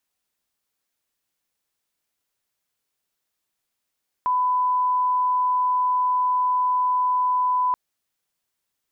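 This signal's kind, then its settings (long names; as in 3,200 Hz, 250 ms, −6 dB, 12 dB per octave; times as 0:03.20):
line-up tone −18 dBFS 3.48 s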